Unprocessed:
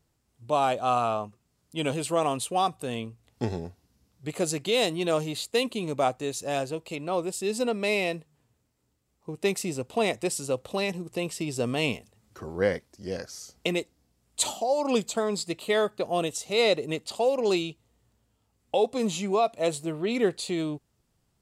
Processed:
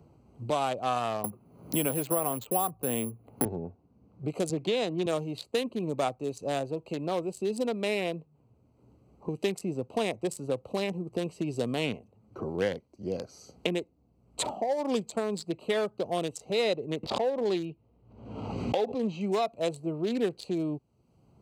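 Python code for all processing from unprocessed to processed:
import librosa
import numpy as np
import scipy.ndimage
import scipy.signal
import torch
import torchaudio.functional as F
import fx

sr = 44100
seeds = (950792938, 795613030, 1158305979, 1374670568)

y = fx.chain(x, sr, fx.resample_bad(factor=4, down='filtered', up='zero_stuff'),
    fx.band_squash(depth_pct=70), at=(1.24, 3.45))
y = fx.chain(y, sr, fx.air_absorb(metres=84.0),
    fx.band_squash(depth_pct=70), at=(4.49, 5.06))
y = fx.chain(y, sr, fx.lowpass(hz=3600.0, slope=12),
    fx.pre_swell(db_per_s=63.0), at=(17.03, 19.21))
y = fx.wiener(y, sr, points=25)
y = scipy.signal.sosfilt(scipy.signal.butter(2, 65.0, 'highpass', fs=sr, output='sos'), y)
y = fx.band_squash(y, sr, depth_pct=70)
y = F.gain(torch.from_numpy(y), -2.5).numpy()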